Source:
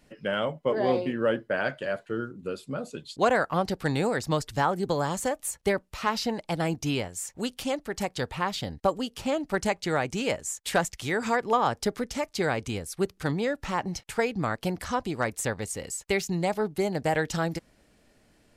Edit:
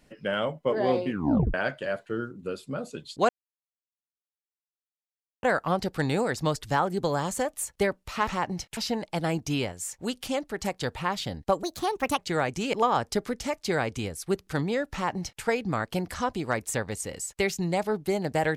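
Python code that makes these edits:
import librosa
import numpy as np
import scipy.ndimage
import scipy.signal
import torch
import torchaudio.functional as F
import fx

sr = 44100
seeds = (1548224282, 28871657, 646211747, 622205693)

y = fx.edit(x, sr, fx.tape_stop(start_s=1.1, length_s=0.44),
    fx.insert_silence(at_s=3.29, length_s=2.14),
    fx.speed_span(start_s=8.99, length_s=0.76, speed=1.37),
    fx.cut(start_s=10.3, length_s=1.14),
    fx.duplicate(start_s=13.63, length_s=0.5, to_s=6.13), tone=tone)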